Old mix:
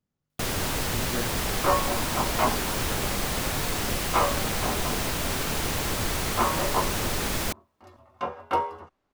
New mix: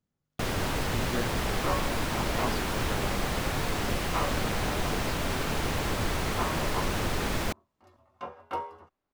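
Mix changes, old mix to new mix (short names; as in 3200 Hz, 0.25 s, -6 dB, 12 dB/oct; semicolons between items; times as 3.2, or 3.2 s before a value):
first sound: add high shelf 4700 Hz -10.5 dB; second sound -8.5 dB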